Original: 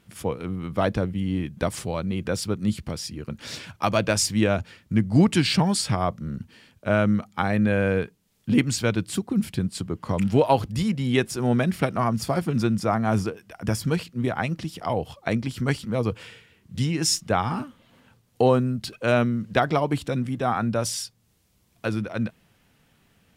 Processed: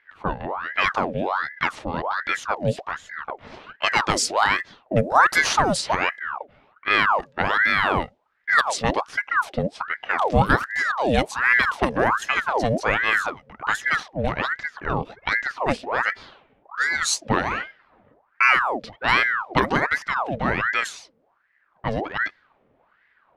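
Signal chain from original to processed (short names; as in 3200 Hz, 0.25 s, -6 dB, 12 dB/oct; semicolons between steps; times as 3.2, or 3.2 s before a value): 10.83–12.14 resonant low shelf 130 Hz +8.5 dB, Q 1.5; low-pass opened by the level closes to 980 Hz, open at -16.5 dBFS; ring modulator with a swept carrier 1100 Hz, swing 70%, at 1.3 Hz; gain +4 dB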